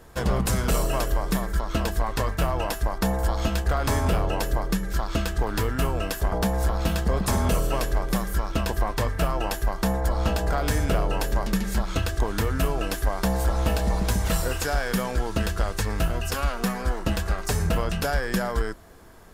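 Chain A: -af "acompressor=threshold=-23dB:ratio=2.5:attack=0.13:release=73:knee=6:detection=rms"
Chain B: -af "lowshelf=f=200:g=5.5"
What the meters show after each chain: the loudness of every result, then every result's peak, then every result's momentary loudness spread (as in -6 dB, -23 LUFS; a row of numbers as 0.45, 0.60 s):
-30.0, -23.0 LUFS; -19.5, -10.0 dBFS; 3, 3 LU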